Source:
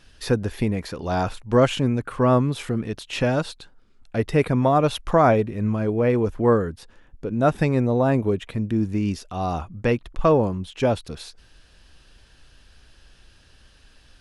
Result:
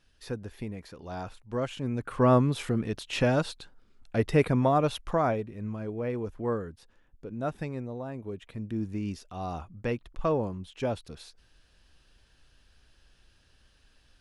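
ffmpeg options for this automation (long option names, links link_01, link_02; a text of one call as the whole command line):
ffmpeg -i in.wav -af "volume=6.5dB,afade=type=in:start_time=1.77:duration=0.46:silence=0.281838,afade=type=out:start_time=4.34:duration=1.07:silence=0.354813,afade=type=out:start_time=7.3:duration=0.84:silence=0.446684,afade=type=in:start_time=8.14:duration=0.65:silence=0.334965" out.wav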